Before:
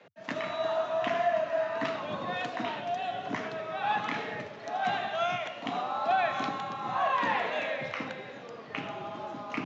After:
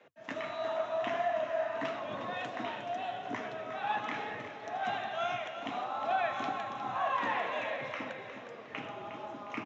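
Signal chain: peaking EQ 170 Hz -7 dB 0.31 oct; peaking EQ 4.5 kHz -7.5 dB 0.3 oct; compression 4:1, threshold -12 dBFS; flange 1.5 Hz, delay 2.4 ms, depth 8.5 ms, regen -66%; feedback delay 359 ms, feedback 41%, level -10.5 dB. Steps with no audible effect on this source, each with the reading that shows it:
compression, threshold -12 dBFS: peak at its input -17.0 dBFS

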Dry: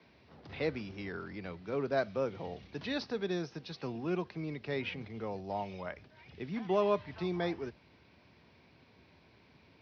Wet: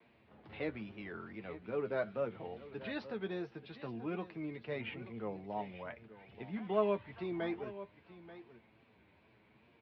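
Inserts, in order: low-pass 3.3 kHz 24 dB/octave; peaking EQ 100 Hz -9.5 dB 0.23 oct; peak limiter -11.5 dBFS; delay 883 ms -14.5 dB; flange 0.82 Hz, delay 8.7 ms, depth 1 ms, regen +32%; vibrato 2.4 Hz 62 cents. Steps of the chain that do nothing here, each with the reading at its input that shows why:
peak limiter -11.5 dBFS: peak at its input -17.0 dBFS

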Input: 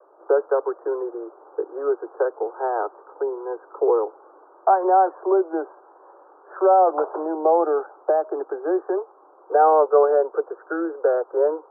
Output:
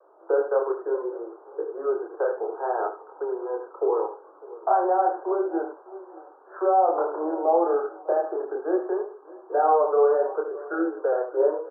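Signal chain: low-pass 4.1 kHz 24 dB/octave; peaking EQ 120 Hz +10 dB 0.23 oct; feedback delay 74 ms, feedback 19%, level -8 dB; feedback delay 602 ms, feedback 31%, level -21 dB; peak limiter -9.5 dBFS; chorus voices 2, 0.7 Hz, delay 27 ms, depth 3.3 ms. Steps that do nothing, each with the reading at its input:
low-pass 4.1 kHz: input has nothing above 1.6 kHz; peaking EQ 120 Hz: input has nothing below 290 Hz

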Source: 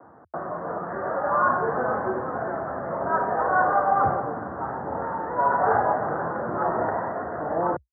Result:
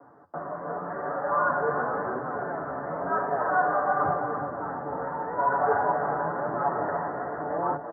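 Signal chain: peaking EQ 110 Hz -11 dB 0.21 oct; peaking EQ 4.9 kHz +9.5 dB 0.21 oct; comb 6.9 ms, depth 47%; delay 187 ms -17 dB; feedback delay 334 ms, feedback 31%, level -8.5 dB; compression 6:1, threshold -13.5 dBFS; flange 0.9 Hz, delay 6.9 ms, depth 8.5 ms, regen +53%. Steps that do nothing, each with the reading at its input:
peaking EQ 4.9 kHz: input has nothing above 1.9 kHz

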